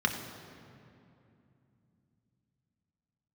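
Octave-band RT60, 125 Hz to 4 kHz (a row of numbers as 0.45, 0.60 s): 4.6, 4.3, 2.9, 2.5, 2.2, 1.7 s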